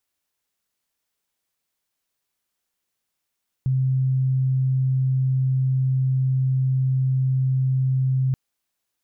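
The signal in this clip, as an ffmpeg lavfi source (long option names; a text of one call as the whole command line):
ffmpeg -f lavfi -i "aevalsrc='0.133*sin(2*PI*131*t)':duration=4.68:sample_rate=44100" out.wav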